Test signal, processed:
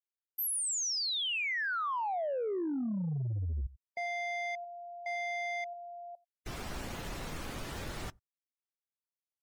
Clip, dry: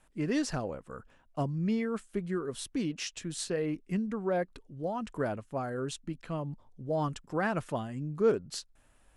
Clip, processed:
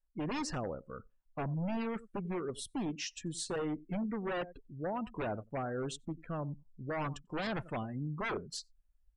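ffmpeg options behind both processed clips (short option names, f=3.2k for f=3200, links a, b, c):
-af "aecho=1:1:92:0.1,aeval=exprs='0.0355*(abs(mod(val(0)/0.0355+3,4)-2)-1)':c=same,afftdn=nr=30:nf=-46,volume=-1.5dB"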